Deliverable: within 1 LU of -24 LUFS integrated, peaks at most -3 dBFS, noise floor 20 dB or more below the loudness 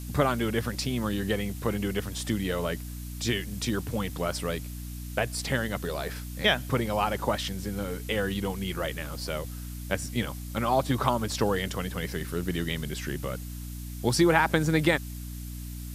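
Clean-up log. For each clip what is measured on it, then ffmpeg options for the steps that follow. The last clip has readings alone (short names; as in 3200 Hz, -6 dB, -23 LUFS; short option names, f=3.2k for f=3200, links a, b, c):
hum 60 Hz; harmonics up to 300 Hz; hum level -35 dBFS; noise floor -38 dBFS; noise floor target -50 dBFS; loudness -29.5 LUFS; peak -6.5 dBFS; loudness target -24.0 LUFS
-> -af "bandreject=f=60:t=h:w=4,bandreject=f=120:t=h:w=4,bandreject=f=180:t=h:w=4,bandreject=f=240:t=h:w=4,bandreject=f=300:t=h:w=4"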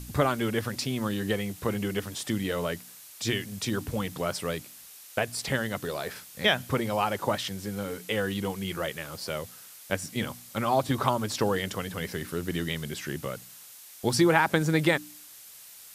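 hum none; noise floor -49 dBFS; noise floor target -50 dBFS
-> -af "afftdn=nr=6:nf=-49"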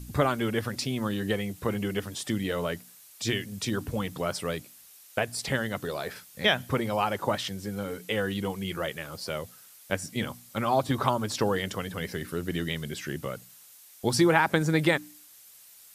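noise floor -53 dBFS; loudness -29.5 LUFS; peak -6.0 dBFS; loudness target -24.0 LUFS
-> -af "volume=5.5dB,alimiter=limit=-3dB:level=0:latency=1"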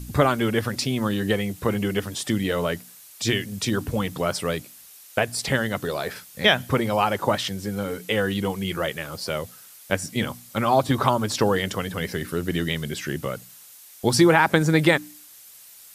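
loudness -24.0 LUFS; peak -3.0 dBFS; noise floor -47 dBFS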